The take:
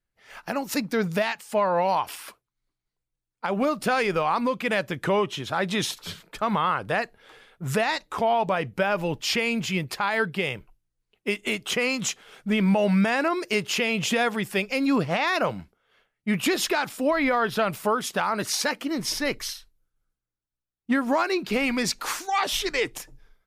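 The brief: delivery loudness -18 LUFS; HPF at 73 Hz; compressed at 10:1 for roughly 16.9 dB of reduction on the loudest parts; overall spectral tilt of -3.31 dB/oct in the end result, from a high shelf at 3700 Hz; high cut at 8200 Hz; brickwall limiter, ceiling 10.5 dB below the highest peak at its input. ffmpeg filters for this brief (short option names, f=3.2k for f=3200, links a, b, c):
-af "highpass=73,lowpass=8.2k,highshelf=f=3.7k:g=8.5,acompressor=threshold=-36dB:ratio=10,volume=23dB,alimiter=limit=-8dB:level=0:latency=1"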